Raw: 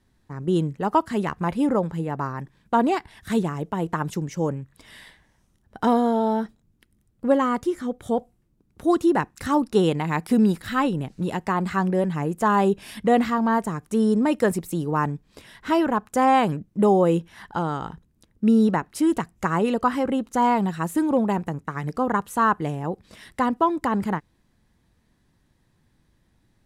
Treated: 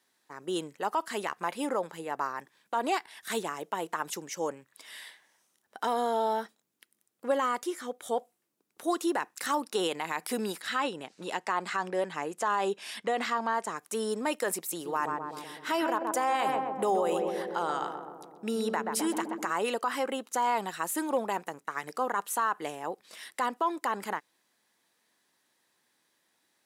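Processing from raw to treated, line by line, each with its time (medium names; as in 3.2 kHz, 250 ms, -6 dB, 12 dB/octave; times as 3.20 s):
10.61–13.76 s: low-pass 7.8 kHz
14.59–19.51 s: filtered feedback delay 128 ms, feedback 73%, low-pass 1.1 kHz, level -5 dB
whole clip: high-pass 410 Hz 12 dB/octave; tilt EQ +2 dB/octave; peak limiter -16.5 dBFS; trim -2 dB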